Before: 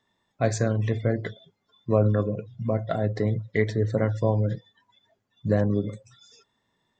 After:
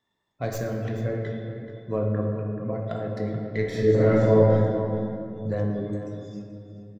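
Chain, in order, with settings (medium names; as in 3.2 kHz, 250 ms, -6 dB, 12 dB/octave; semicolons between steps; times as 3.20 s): tracing distortion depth 0.063 ms; 2.02–2.73 s: steep low-pass 2.8 kHz 48 dB/octave; 3.63–4.53 s: reverb throw, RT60 1 s, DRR -9.5 dB; echo from a far wall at 74 m, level -10 dB; reverberation RT60 2.6 s, pre-delay 7 ms, DRR 1 dB; trim -6.5 dB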